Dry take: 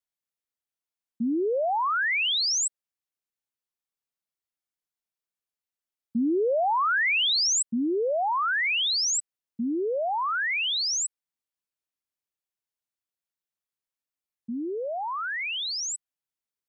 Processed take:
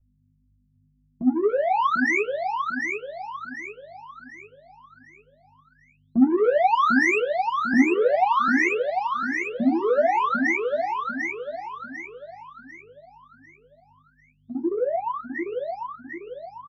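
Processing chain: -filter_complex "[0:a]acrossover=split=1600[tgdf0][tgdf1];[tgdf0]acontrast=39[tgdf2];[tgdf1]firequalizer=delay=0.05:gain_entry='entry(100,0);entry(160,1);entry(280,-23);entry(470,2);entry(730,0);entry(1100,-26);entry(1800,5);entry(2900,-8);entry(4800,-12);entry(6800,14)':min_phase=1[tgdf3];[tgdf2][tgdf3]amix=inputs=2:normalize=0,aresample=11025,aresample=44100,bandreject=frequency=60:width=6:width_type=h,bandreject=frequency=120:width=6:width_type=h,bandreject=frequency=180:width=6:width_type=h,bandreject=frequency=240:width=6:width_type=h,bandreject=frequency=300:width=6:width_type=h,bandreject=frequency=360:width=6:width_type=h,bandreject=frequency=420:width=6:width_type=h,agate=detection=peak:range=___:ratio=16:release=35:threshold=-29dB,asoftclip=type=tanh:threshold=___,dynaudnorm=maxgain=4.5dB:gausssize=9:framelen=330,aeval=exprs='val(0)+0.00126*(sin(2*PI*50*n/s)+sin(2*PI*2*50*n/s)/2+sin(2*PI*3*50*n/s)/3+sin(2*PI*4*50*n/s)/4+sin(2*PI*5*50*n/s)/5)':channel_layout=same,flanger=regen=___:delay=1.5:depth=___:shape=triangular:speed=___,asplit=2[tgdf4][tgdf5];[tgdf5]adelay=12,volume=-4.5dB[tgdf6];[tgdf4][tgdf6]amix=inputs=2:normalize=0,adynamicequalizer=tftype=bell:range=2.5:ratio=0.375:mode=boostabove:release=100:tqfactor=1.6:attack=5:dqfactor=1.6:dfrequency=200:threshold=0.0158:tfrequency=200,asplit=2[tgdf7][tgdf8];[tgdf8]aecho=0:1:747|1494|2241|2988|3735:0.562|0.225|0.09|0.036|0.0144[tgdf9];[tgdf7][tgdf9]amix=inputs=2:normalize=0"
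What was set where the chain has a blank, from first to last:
-21dB, -19.5dB, 14, 7.2, 1.9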